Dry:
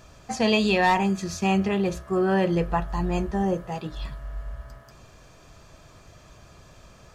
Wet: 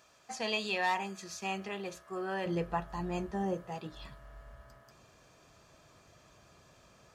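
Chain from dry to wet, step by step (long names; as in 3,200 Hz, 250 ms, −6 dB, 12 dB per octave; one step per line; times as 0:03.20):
high-pass filter 770 Hz 6 dB per octave, from 0:02.46 150 Hz
level −8 dB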